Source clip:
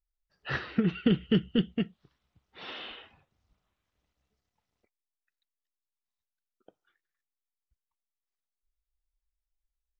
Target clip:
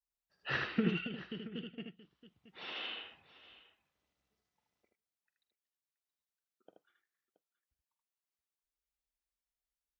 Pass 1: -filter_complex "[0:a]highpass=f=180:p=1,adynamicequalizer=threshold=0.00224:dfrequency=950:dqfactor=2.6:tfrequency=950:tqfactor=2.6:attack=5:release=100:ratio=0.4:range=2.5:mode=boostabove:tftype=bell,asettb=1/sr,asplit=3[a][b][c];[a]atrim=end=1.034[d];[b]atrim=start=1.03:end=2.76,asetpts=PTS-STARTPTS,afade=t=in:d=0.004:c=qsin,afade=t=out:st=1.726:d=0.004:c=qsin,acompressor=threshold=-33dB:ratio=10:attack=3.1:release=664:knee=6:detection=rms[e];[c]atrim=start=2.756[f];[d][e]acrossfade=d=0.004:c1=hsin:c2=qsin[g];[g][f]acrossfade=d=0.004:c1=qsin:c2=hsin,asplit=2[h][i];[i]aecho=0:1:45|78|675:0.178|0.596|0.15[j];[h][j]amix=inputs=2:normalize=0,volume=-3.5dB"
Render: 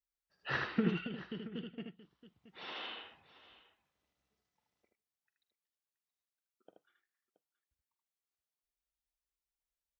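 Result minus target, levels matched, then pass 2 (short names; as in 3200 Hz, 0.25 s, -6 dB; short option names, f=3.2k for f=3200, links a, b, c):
1000 Hz band +2.5 dB
-filter_complex "[0:a]highpass=f=180:p=1,adynamicequalizer=threshold=0.00224:dfrequency=2700:dqfactor=2.6:tfrequency=2700:tqfactor=2.6:attack=5:release=100:ratio=0.4:range=2.5:mode=boostabove:tftype=bell,asettb=1/sr,asplit=3[a][b][c];[a]atrim=end=1.034[d];[b]atrim=start=1.03:end=2.76,asetpts=PTS-STARTPTS,afade=t=in:d=0.004:c=qsin,afade=t=out:st=1.726:d=0.004:c=qsin,acompressor=threshold=-33dB:ratio=10:attack=3.1:release=664:knee=6:detection=rms[e];[c]atrim=start=2.756[f];[d][e]acrossfade=d=0.004:c1=hsin:c2=qsin[g];[g][f]acrossfade=d=0.004:c1=qsin:c2=hsin,asplit=2[h][i];[i]aecho=0:1:45|78|675:0.178|0.596|0.15[j];[h][j]amix=inputs=2:normalize=0,volume=-3.5dB"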